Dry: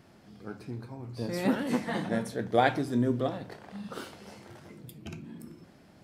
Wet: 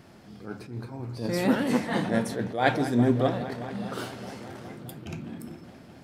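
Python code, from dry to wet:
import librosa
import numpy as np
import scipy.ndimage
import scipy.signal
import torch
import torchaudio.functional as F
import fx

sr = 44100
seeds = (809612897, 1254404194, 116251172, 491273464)

p1 = x + fx.echo_wet_lowpass(x, sr, ms=207, feedback_pct=81, hz=4000.0, wet_db=-17, dry=0)
p2 = fx.attack_slew(p1, sr, db_per_s=120.0)
y = p2 * librosa.db_to_amplitude(5.5)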